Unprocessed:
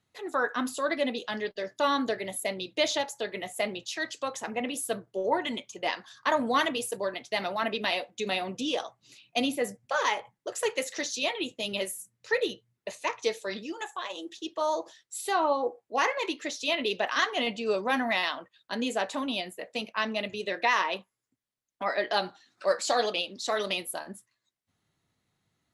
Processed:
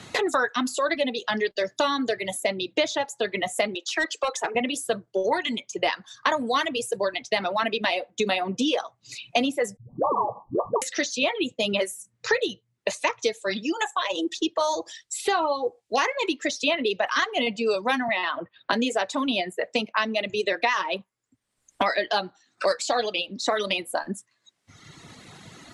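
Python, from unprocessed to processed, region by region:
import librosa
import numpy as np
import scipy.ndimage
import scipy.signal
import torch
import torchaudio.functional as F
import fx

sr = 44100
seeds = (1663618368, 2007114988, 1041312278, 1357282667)

y = fx.chain(x, sr, fx.steep_highpass(hz=310.0, slope=48),
    fx.overload_stage(gain_db=29.0), at=(3.75, 4.55))
y = fx.chain(y, sr, fx.brickwall_lowpass(high_hz=1200.0),
    fx.dispersion(late='highs', ms=141.0, hz=300.0),
    fx.spectral_comp(ratio=2.0), at=(9.77, 10.82))
y = fx.chain(y, sr, fx.air_absorb(metres=360.0),
    fx.band_squash(depth_pct=70), at=(18.08, 18.73))
y = scipy.signal.sosfilt(scipy.signal.butter(4, 9700.0, 'lowpass', fs=sr, output='sos'), y)
y = fx.dereverb_blind(y, sr, rt60_s=1.1)
y = fx.band_squash(y, sr, depth_pct=100)
y = F.gain(torch.from_numpy(y), 4.5).numpy()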